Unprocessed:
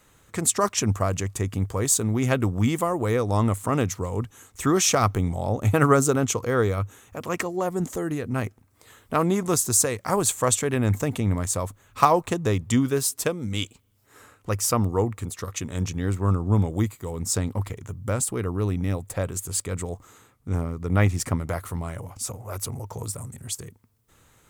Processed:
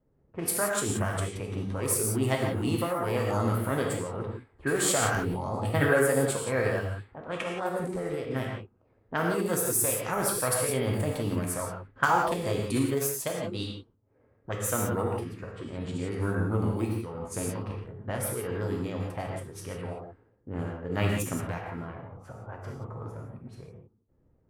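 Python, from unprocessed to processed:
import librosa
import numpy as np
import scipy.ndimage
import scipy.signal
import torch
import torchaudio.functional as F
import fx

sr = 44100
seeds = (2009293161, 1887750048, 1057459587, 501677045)

y = fx.rev_gated(x, sr, seeds[0], gate_ms=200, shape='flat', drr_db=-1.0)
y = fx.env_lowpass(y, sr, base_hz=350.0, full_db=-17.5)
y = fx.formant_shift(y, sr, semitones=4)
y = y * 10.0 ** (-8.0 / 20.0)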